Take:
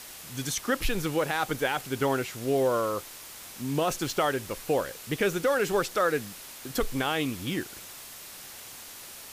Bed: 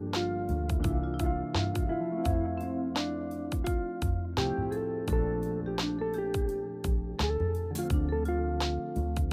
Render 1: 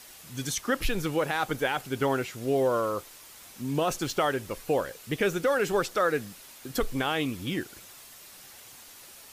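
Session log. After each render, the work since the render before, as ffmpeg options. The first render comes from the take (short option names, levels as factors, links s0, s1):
-af "afftdn=nr=6:nf=-45"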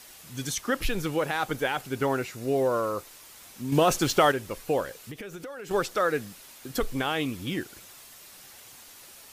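-filter_complex "[0:a]asettb=1/sr,asplit=3[s0][s1][s2];[s0]atrim=end=1.924[s3];[s1]atrim=start=1.92:end=3.07,asetpts=PTS-STARTPTS,afade=t=in:d=0.004:c=qsin,afade=t=out:st=1.146:d=0.004:c=qsin,bandreject=f=3200:w=9.4[s4];[s2]atrim=start=3.066[s5];[s3][s4]acrossfade=d=0.004:c1=hsin:c2=qsin[s6];[s6][s5]acrossfade=d=0.004:c1=qsin:c2=hsin,asettb=1/sr,asplit=3[s7][s8][s9];[s7]atrim=end=3.724[s10];[s8]atrim=start=3.72:end=4.32,asetpts=PTS-STARTPTS,afade=t=in:d=0.004:c=qsin,afade=t=out:st=0.596:d=0.004:c=qsin,acontrast=46[s11];[s9]atrim=start=4.316[s12];[s10][s11]acrossfade=d=0.004:c1=hsin:c2=qsin[s13];[s13][s12]acrossfade=d=0.004:c1=qsin:c2=hsin,asettb=1/sr,asplit=3[s14][s15][s16];[s14]atrim=end=5.074[s17];[s15]atrim=start=5.07:end=5.71,asetpts=PTS-STARTPTS,afade=t=in:d=0.004:c=qsin,afade=t=out:st=0.636:d=0.004:c=qsin,acompressor=threshold=0.0178:ratio=20:attack=3.2:release=140:knee=1:detection=peak[s18];[s16]atrim=start=5.706[s19];[s17][s18]acrossfade=d=0.004:c1=hsin:c2=qsin[s20];[s20][s19]acrossfade=d=0.004:c1=qsin:c2=hsin"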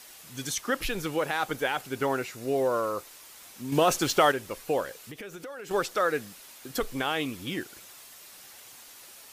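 -af "lowshelf=f=200:g=-7.5"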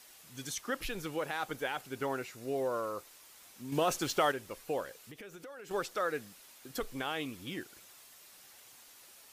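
-af "volume=0.422"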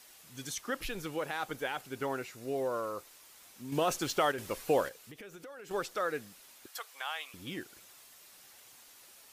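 -filter_complex "[0:a]asettb=1/sr,asplit=3[s0][s1][s2];[s0]atrim=end=4.384[s3];[s1]atrim=start=4.38:end=4.89,asetpts=PTS-STARTPTS,afade=t=in:d=0.004:c=qsin,afade=t=out:st=0.506:d=0.004:c=qsin,acontrast=88[s4];[s2]atrim=start=4.886[s5];[s3][s4]acrossfade=d=0.004:c1=hsin:c2=qsin[s6];[s6][s5]acrossfade=d=0.004:c1=qsin:c2=hsin,asettb=1/sr,asplit=3[s7][s8][s9];[s7]atrim=end=6.664[s10];[s8]atrim=start=6.66:end=7.34,asetpts=PTS-STARTPTS,afade=t=in:d=0.004:c=qsin,afade=t=out:st=0.676:d=0.004:c=qsin,highpass=f=740:w=0.5412,highpass=f=740:w=1.3066[s11];[s9]atrim=start=7.336[s12];[s10][s11]acrossfade=d=0.004:c1=hsin:c2=qsin[s13];[s13][s12]acrossfade=d=0.004:c1=qsin:c2=hsin"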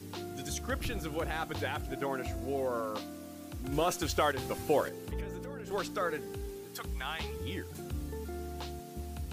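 -filter_complex "[1:a]volume=0.282[s0];[0:a][s0]amix=inputs=2:normalize=0"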